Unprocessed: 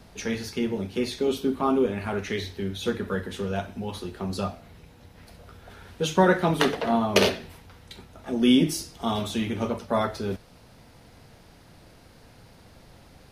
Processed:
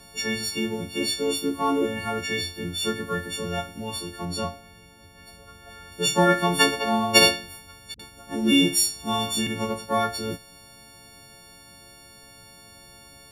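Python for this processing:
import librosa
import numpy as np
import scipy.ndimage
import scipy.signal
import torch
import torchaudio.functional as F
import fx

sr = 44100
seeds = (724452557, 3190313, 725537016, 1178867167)

y = fx.freq_snap(x, sr, grid_st=4)
y = fx.high_shelf(y, sr, hz=4400.0, db=-6.0, at=(4.25, 5.92))
y = fx.dispersion(y, sr, late='highs', ms=54.0, hz=310.0, at=(7.94, 9.47))
y = y * librosa.db_to_amplitude(-1.0)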